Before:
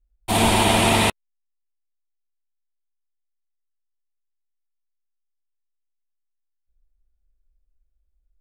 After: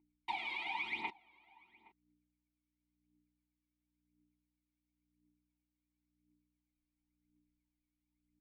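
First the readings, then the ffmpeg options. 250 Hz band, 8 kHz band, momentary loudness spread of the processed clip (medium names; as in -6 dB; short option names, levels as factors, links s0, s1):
-34.5 dB, under -40 dB, 5 LU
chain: -filter_complex "[0:a]bandreject=f=2600:w=15,aeval=exprs='val(0)+0.00112*(sin(2*PI*60*n/s)+sin(2*PI*2*60*n/s)/2+sin(2*PI*3*60*n/s)/3+sin(2*PI*4*60*n/s)/4+sin(2*PI*5*60*n/s)/5)':c=same,equalizer=f=125:t=o:w=1:g=-5,equalizer=f=250:t=o:w=1:g=-10,equalizer=f=2000:t=o:w=1:g=10,equalizer=f=4000:t=o:w=1:g=10,equalizer=f=8000:t=o:w=1:g=-3,acrossover=split=7300[s0][s1];[s1]acompressor=threshold=0.0158:ratio=4:attack=1:release=60[s2];[s0][s2]amix=inputs=2:normalize=0,lowshelf=f=260:g=-7,alimiter=limit=0.251:level=0:latency=1,acompressor=threshold=0.0316:ratio=4,aecho=1:1:5.3:0.33,aphaser=in_gain=1:out_gain=1:delay=1.9:decay=0.72:speed=0.95:type=triangular,asplit=3[s3][s4][s5];[s3]bandpass=f=300:t=q:w=8,volume=1[s6];[s4]bandpass=f=870:t=q:w=8,volume=0.501[s7];[s5]bandpass=f=2240:t=q:w=8,volume=0.355[s8];[s6][s7][s8]amix=inputs=3:normalize=0,asplit=2[s9][s10];[s10]adelay=816.3,volume=0.0794,highshelf=f=4000:g=-18.4[s11];[s9][s11]amix=inputs=2:normalize=0,volume=1.19"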